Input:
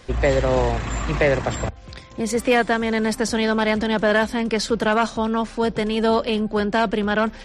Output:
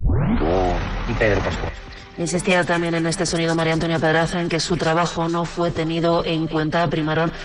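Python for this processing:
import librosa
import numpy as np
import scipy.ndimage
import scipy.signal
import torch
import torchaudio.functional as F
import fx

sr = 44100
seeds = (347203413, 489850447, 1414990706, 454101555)

p1 = fx.tape_start_head(x, sr, length_s=0.57)
p2 = fx.pitch_keep_formants(p1, sr, semitones=-5.0)
p3 = fx.transient(p2, sr, attack_db=1, sustain_db=7)
y = p3 + fx.echo_wet_highpass(p3, sr, ms=231, feedback_pct=57, hz=1500.0, wet_db=-12.0, dry=0)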